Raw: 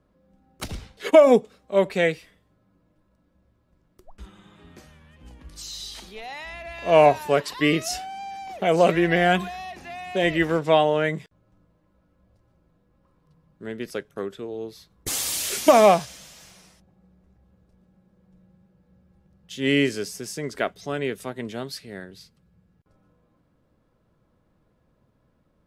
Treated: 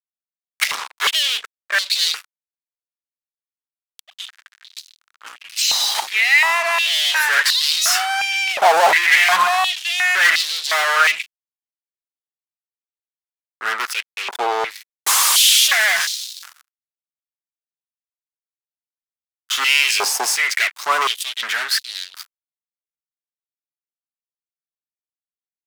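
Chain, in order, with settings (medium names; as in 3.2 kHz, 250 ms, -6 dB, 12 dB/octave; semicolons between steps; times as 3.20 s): fuzz box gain 36 dB, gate -44 dBFS; step-sequenced high-pass 2.8 Hz 850–4000 Hz; trim -1 dB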